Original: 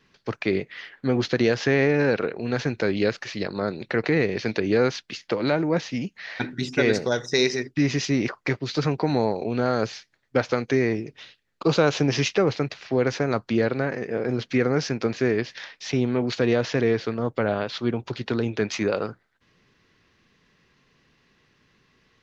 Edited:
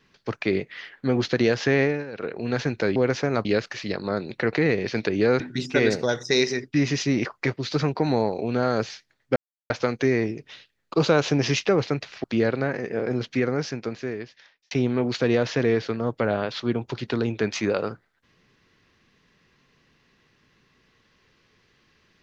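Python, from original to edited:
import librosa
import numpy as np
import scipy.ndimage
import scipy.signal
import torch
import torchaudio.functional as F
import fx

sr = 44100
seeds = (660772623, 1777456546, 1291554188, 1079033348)

y = fx.edit(x, sr, fx.fade_down_up(start_s=1.81, length_s=0.55, db=-16.0, fade_s=0.24),
    fx.cut(start_s=4.91, length_s=1.52),
    fx.insert_silence(at_s=10.39, length_s=0.34),
    fx.move(start_s=12.93, length_s=0.49, to_s=2.96),
    fx.fade_out_span(start_s=14.26, length_s=1.63), tone=tone)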